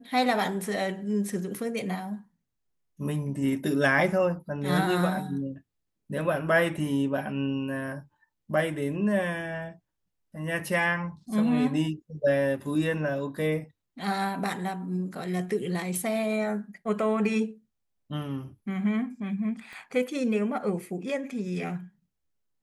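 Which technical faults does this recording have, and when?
19.73 pop -31 dBFS

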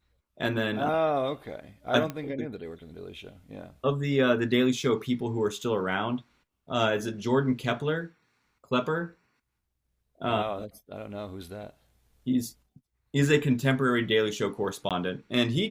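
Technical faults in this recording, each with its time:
2.1 pop -19 dBFS
14.89–14.91 gap 17 ms

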